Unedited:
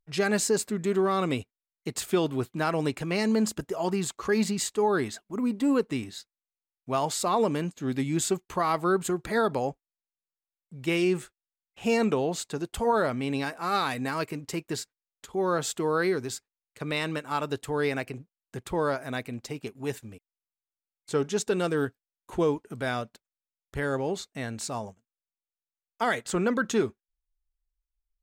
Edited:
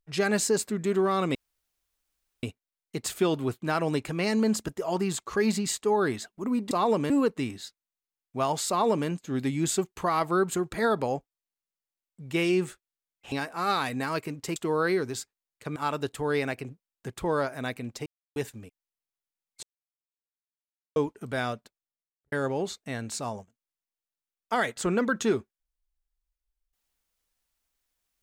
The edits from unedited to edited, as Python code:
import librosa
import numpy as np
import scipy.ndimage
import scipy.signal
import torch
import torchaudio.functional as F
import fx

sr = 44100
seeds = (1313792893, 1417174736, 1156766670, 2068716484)

y = fx.studio_fade_out(x, sr, start_s=23.03, length_s=0.78)
y = fx.edit(y, sr, fx.insert_room_tone(at_s=1.35, length_s=1.08),
    fx.duplicate(start_s=7.22, length_s=0.39, to_s=5.63),
    fx.cut(start_s=11.85, length_s=1.52),
    fx.cut(start_s=14.61, length_s=1.1),
    fx.cut(start_s=16.91, length_s=0.34),
    fx.silence(start_s=19.55, length_s=0.3),
    fx.silence(start_s=21.12, length_s=1.33), tone=tone)